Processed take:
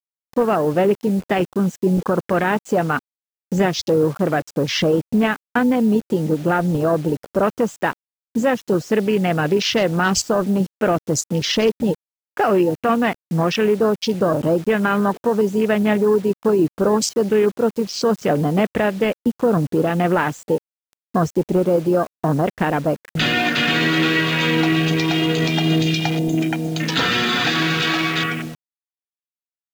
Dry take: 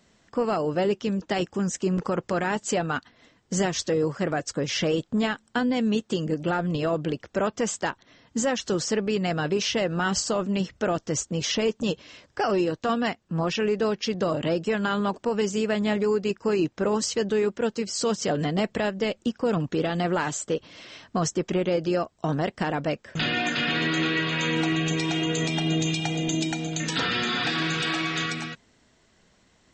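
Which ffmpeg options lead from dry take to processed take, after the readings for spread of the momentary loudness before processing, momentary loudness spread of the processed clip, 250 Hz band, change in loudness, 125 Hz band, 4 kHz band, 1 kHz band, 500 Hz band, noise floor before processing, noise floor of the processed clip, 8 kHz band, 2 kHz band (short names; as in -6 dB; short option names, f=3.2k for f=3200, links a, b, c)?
4 LU, 4 LU, +7.5 dB, +7.0 dB, +7.5 dB, +5.5 dB, +7.5 dB, +7.5 dB, -64 dBFS, under -85 dBFS, +1.5 dB, +7.0 dB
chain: -af "afwtdn=0.02,acrusher=bits=7:mix=0:aa=0.000001,volume=7.5dB"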